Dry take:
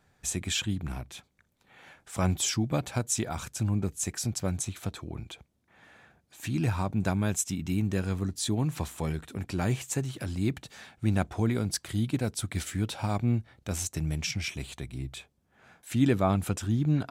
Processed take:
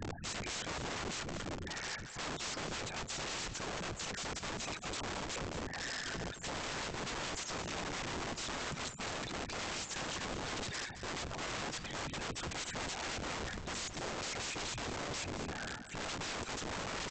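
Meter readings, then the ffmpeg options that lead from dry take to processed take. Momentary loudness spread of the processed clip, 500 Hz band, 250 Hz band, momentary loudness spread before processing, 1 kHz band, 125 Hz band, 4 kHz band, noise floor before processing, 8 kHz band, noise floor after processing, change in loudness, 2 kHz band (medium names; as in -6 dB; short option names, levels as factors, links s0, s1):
2 LU, -7.0 dB, -15.0 dB, 12 LU, -2.5 dB, -17.5 dB, -1.5 dB, -71 dBFS, -7.5 dB, -47 dBFS, -9.0 dB, +0.5 dB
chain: -af "aeval=exprs='val(0)+0.5*0.0119*sgn(val(0))':c=same,afftfilt=real='re*gte(hypot(re,im),0.02)':imag='im*gte(hypot(re,im),0.02)':win_size=1024:overlap=0.75,areverse,acompressor=threshold=0.0141:ratio=16,areverse,afftfilt=real='hypot(re,im)*cos(2*PI*random(0))':imag='hypot(re,im)*sin(2*PI*random(1))':win_size=512:overlap=0.75,aresample=16000,aeval=exprs='(mod(299*val(0)+1,2)-1)/299':c=same,aresample=44100,aecho=1:1:220:0.299,volume=5.01"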